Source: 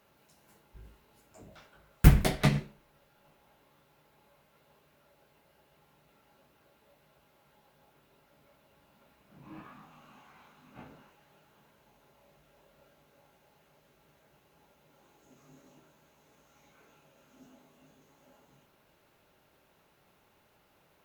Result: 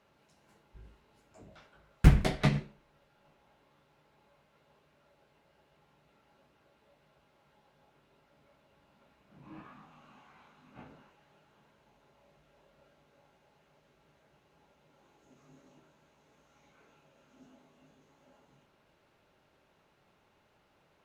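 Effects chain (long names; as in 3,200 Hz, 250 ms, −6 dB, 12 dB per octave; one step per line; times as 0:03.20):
high-frequency loss of the air 55 metres
level −1.5 dB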